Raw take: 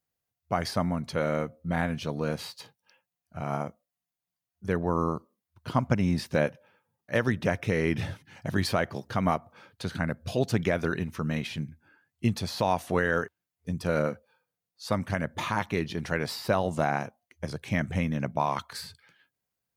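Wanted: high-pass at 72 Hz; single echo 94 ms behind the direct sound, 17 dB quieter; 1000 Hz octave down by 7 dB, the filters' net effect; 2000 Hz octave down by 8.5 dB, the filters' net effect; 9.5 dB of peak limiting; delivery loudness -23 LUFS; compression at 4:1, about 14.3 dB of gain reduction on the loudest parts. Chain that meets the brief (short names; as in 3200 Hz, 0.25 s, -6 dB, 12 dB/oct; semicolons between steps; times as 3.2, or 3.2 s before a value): HPF 72 Hz; bell 1000 Hz -8 dB; bell 2000 Hz -8 dB; compressor 4:1, threshold -38 dBFS; limiter -33.5 dBFS; echo 94 ms -17 dB; gain +22.5 dB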